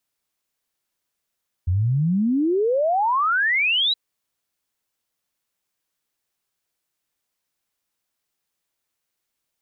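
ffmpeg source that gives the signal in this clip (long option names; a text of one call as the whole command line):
ffmpeg -f lavfi -i "aevalsrc='0.141*clip(min(t,2.27-t)/0.01,0,1)*sin(2*PI*84*2.27/log(4000/84)*(exp(log(4000/84)*t/2.27)-1))':duration=2.27:sample_rate=44100" out.wav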